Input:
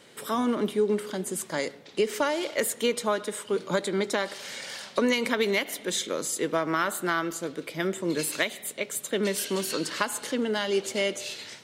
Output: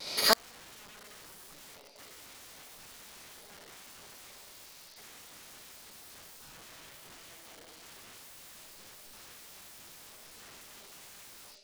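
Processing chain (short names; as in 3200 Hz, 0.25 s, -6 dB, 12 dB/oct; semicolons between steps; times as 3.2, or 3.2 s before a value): tracing distortion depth 0.028 ms; dynamic EQ 500 Hz, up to +8 dB, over -40 dBFS, Q 1.4; vibrato 0.57 Hz 18 cents; bell 3700 Hz +14.5 dB 0.79 oct; notches 50/100/150/200/250 Hz; on a send: echo with dull and thin repeats by turns 0.115 s, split 1900 Hz, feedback 70%, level -11 dB; on the sum: limiter -16.5 dBFS, peak gain reduction 13 dB; digital reverb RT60 0.55 s, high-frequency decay 0.7×, pre-delay 20 ms, DRR -5 dB; AGC gain up to 15.5 dB; wrapped overs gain 13 dB; formant shift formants +4 st; flipped gate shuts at -13 dBFS, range -38 dB; gain +4 dB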